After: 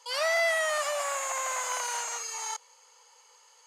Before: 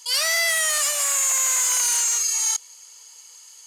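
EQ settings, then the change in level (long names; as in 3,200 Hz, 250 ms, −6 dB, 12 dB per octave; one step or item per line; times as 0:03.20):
low-pass filter 1,400 Hz 6 dB per octave
parametric band 680 Hz +8.5 dB 1.9 octaves
−2.0 dB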